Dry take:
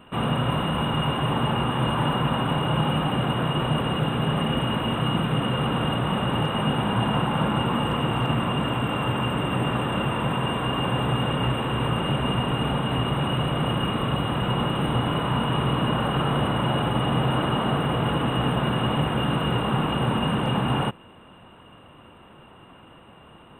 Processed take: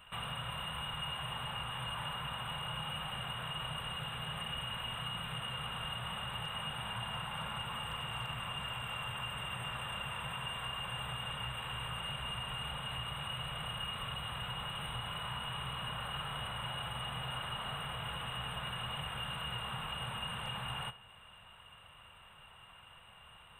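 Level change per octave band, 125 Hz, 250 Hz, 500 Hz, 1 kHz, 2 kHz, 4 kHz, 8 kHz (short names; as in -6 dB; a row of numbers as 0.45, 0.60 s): -20.0, -26.5, -23.0, -15.0, -10.0, -8.0, -6.0 dB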